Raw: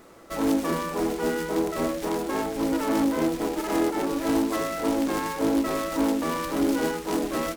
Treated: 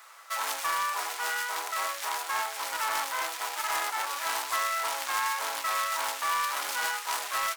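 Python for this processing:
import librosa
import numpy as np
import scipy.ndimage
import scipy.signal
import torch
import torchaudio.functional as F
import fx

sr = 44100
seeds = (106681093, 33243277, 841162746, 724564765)

p1 = scipy.signal.sosfilt(scipy.signal.butter(4, 970.0, 'highpass', fs=sr, output='sos'), x)
p2 = 10.0 ** (-29.0 / 20.0) * (np.abs((p1 / 10.0 ** (-29.0 / 20.0) + 3.0) % 4.0 - 2.0) - 1.0)
p3 = p1 + F.gain(torch.from_numpy(p2), -12.0).numpy()
y = F.gain(torch.from_numpy(p3), 3.0).numpy()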